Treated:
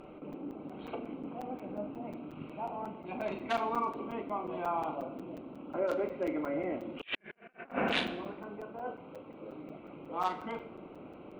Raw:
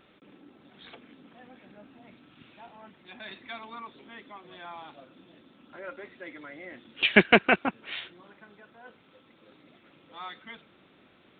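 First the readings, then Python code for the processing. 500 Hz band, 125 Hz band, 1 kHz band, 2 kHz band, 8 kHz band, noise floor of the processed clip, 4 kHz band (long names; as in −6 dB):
−2.0 dB, −5.5 dB, +0.5 dB, −13.0 dB, can't be measured, −52 dBFS, −8.5 dB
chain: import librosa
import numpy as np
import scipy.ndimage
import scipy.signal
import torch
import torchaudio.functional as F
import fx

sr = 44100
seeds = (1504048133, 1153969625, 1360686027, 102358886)

y = fx.wiener(x, sr, points=25)
y = fx.high_shelf(y, sr, hz=2800.0, db=-3.0)
y = fx.doubler(y, sr, ms=39.0, db=-9)
y = fx.env_lowpass_down(y, sr, base_hz=2200.0, full_db=-24.0)
y = fx.peak_eq(y, sr, hz=120.0, db=-7.5, octaves=2.2)
y = fx.room_shoebox(y, sr, seeds[0], volume_m3=540.0, walls='mixed', distance_m=0.47)
y = fx.over_compress(y, sr, threshold_db=-43.0, ratio=-0.5)
y = fx.buffer_crackle(y, sr, first_s=0.33, period_s=0.18, block=256, kind='zero')
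y = y * 10.0 ** (6.5 / 20.0)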